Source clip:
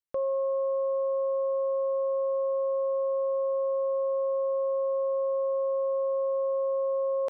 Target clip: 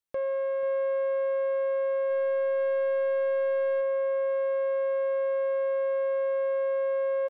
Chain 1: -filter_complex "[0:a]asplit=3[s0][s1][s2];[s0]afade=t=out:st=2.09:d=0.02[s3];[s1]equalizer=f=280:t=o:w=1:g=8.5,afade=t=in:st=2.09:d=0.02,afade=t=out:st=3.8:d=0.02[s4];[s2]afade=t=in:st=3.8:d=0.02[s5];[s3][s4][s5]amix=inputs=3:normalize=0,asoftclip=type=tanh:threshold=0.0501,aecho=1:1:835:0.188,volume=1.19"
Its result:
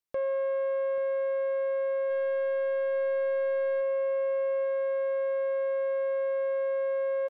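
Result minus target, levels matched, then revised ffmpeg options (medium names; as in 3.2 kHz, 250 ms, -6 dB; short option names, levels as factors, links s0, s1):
echo 347 ms late
-filter_complex "[0:a]asplit=3[s0][s1][s2];[s0]afade=t=out:st=2.09:d=0.02[s3];[s1]equalizer=f=280:t=o:w=1:g=8.5,afade=t=in:st=2.09:d=0.02,afade=t=out:st=3.8:d=0.02[s4];[s2]afade=t=in:st=3.8:d=0.02[s5];[s3][s4][s5]amix=inputs=3:normalize=0,asoftclip=type=tanh:threshold=0.0501,aecho=1:1:488:0.188,volume=1.19"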